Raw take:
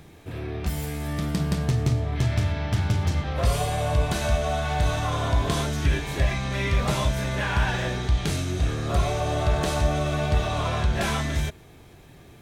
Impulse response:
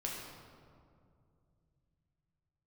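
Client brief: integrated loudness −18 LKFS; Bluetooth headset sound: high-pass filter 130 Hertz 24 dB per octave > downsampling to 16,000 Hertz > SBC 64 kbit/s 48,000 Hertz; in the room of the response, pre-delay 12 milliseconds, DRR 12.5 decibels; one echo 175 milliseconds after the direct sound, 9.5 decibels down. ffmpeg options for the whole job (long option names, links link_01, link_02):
-filter_complex "[0:a]aecho=1:1:175:0.335,asplit=2[link_01][link_02];[1:a]atrim=start_sample=2205,adelay=12[link_03];[link_02][link_03]afir=irnorm=-1:irlink=0,volume=-14dB[link_04];[link_01][link_04]amix=inputs=2:normalize=0,highpass=frequency=130:width=0.5412,highpass=frequency=130:width=1.3066,aresample=16000,aresample=44100,volume=9.5dB" -ar 48000 -c:a sbc -b:a 64k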